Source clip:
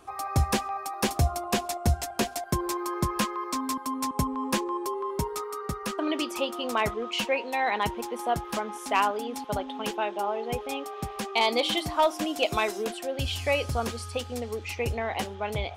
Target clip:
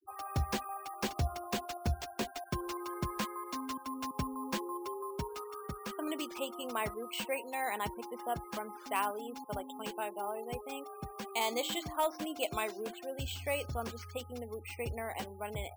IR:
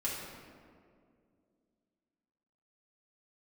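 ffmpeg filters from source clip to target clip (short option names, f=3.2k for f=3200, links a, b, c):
-af "afftfilt=real='re*gte(hypot(re,im),0.0112)':imag='im*gte(hypot(re,im),0.0112)':win_size=1024:overlap=0.75,acrusher=samples=4:mix=1:aa=0.000001,volume=-9dB"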